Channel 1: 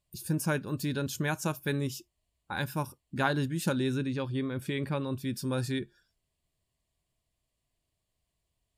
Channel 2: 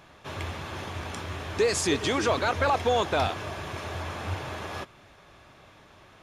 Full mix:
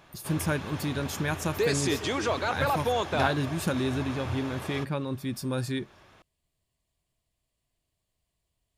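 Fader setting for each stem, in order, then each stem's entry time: +1.0, -3.0 dB; 0.00, 0.00 s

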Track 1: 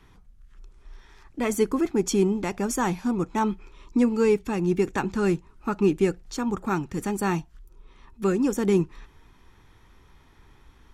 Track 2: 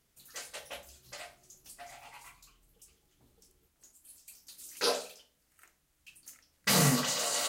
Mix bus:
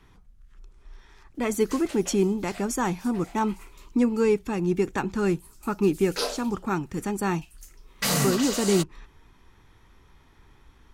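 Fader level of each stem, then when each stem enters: -1.0, +1.0 dB; 0.00, 1.35 s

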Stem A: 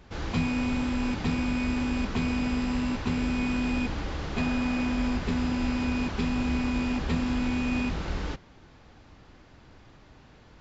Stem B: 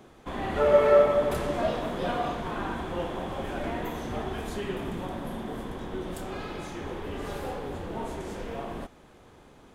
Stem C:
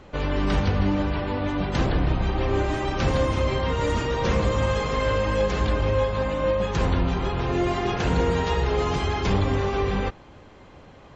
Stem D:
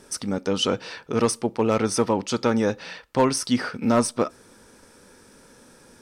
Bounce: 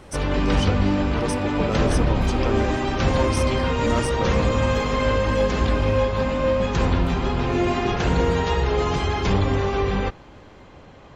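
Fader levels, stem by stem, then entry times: -3.5, -12.0, +2.0, -7.0 dB; 0.00, 0.90, 0.00, 0.00 s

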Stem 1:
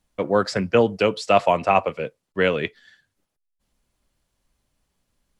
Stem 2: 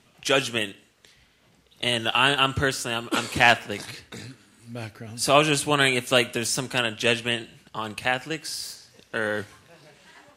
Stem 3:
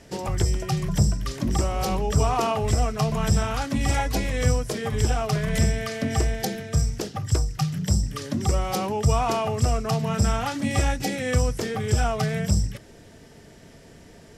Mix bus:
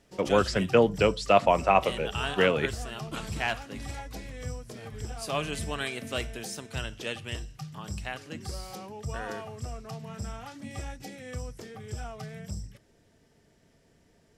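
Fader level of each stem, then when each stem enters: -3.5, -13.0, -15.5 dB; 0.00, 0.00, 0.00 s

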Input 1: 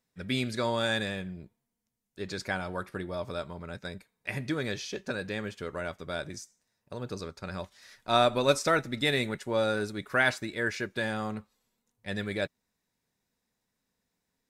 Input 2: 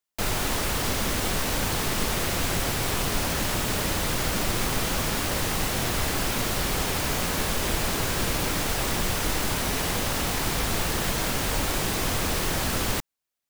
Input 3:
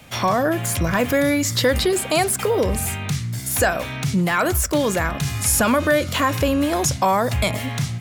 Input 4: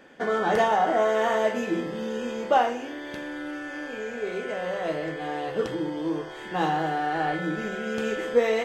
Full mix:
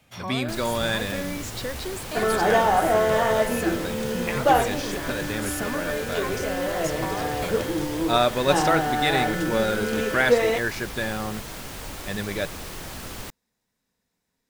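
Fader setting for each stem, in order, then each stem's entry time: +3.0, -10.0, -14.5, +2.0 dB; 0.00, 0.30, 0.00, 1.95 s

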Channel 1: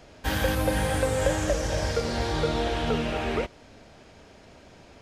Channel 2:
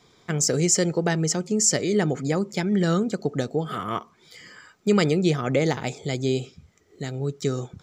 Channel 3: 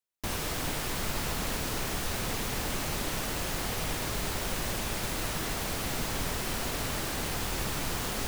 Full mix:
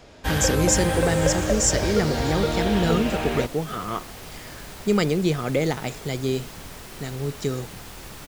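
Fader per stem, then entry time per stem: +2.0, -1.0, -7.5 dB; 0.00, 0.00, 0.45 s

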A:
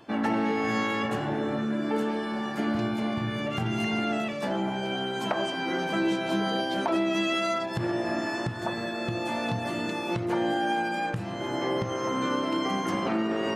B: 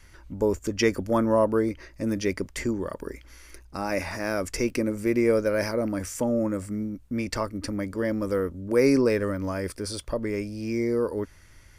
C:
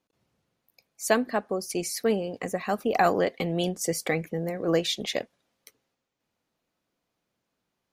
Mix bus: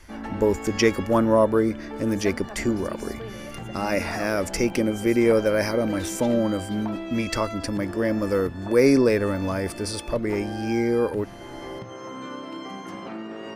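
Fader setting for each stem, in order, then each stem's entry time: -8.0, +3.0, -14.0 dB; 0.00, 0.00, 1.15 s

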